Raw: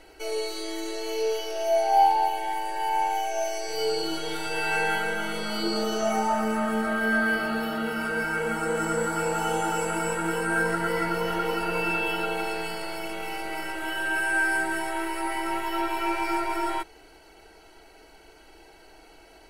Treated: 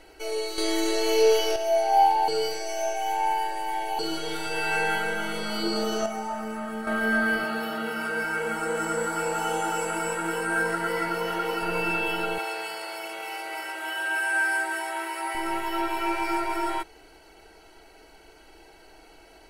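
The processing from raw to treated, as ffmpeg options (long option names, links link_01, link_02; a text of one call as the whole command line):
ffmpeg -i in.wav -filter_complex "[0:a]asettb=1/sr,asplit=3[link_01][link_02][link_03];[link_01]atrim=end=7.444[link_04];[link_02]atrim=start=7.44:end=11.62,asetpts=PTS-STARTPTS,afade=type=in:duration=0.004:curve=qsin,afade=type=out:start_time=4.176:duration=0.004:curve=qsin,lowshelf=frequency=170:gain=-10.5[link_05];[link_03]atrim=start=11.616[link_06];[link_04][link_05]acrossfade=duration=0.004:curve1=hsin:curve2=qsin[link_07];[link_07][link_06]acrossfade=duration=0.004:curve1=qsin:curve2=hsin,asettb=1/sr,asplit=3[link_08][link_09][link_10];[link_08]atrim=end=12.384[link_11];[link_09]atrim=start=12.38:end=15.35,asetpts=PTS-STARTPTS,afade=type=in:duration=0.004:curve=qsin,afade=type=out:start_time=2.966:duration=0.004:curve=qsin,highpass=500[link_12];[link_10]atrim=start=15.346[link_13];[link_11][link_12]acrossfade=duration=0.004:curve1=hsin:curve2=qsin[link_14];[link_14][link_13]acrossfade=duration=0.004:curve1=qsin:curve2=hsin,asplit=7[link_15][link_16][link_17][link_18][link_19][link_20][link_21];[link_15]atrim=end=0.582[link_22];[link_16]atrim=start=0.578:end=1.562,asetpts=PTS-STARTPTS,volume=7.5dB[link_23];[link_17]atrim=start=1.558:end=2.282[link_24];[link_18]atrim=start=2.278:end=3.992,asetpts=PTS-STARTPTS,areverse[link_25];[link_19]atrim=start=3.988:end=6.062[link_26];[link_20]atrim=start=6.058:end=6.872,asetpts=PTS-STARTPTS,volume=-7dB[link_27];[link_21]atrim=start=6.868[link_28];[link_22][link_23]acrossfade=duration=0.004:curve1=hsin:curve2=hsin[link_29];[link_29][link_24]acrossfade=duration=0.004:curve1=hsin:curve2=hsin[link_30];[link_30][link_25]acrossfade=duration=0.004:curve1=hsin:curve2=hsin[link_31];[link_31][link_26]acrossfade=duration=0.004:curve1=hsin:curve2=hsin[link_32];[link_32][link_27]acrossfade=duration=0.004:curve1=hsin:curve2=hsin[link_33];[link_33][link_28]acrossfade=duration=0.004:curve1=hsin:curve2=hsin" out.wav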